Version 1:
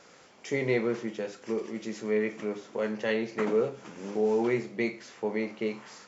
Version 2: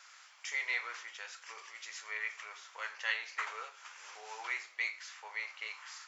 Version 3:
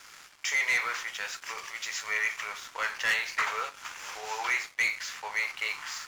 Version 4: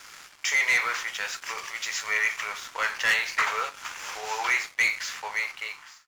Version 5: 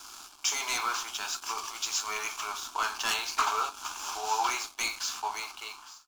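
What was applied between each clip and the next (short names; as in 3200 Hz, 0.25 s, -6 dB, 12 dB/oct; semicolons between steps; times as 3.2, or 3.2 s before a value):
HPF 1100 Hz 24 dB/oct; gain +1 dB
sample leveller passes 3
ending faded out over 0.92 s; gain +4 dB
fixed phaser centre 520 Hz, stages 6; gain +3.5 dB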